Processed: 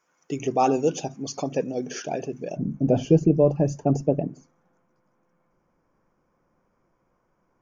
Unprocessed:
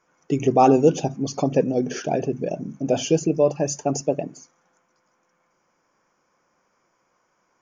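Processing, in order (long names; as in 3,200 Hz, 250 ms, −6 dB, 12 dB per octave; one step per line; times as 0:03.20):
spectral tilt +1.5 dB per octave, from 0:02.56 −4 dB per octave
level −4.5 dB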